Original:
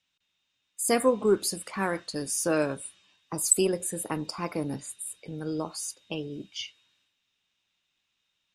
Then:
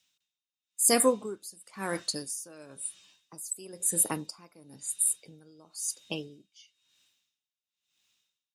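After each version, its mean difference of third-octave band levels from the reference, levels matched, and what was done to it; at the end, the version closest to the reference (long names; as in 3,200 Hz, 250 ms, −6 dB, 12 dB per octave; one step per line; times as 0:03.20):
8.0 dB: high-pass filter 130 Hz 6 dB per octave
bass and treble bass +3 dB, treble +12 dB
tremolo with a sine in dB 0.99 Hz, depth 25 dB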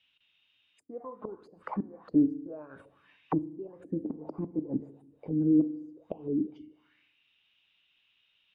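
14.5 dB: gate with flip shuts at −19 dBFS, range −24 dB
feedback delay network reverb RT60 0.88 s, low-frequency decay 1.05×, high-frequency decay 0.75×, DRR 12 dB
envelope-controlled low-pass 290–3,000 Hz down, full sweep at −33.5 dBFS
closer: first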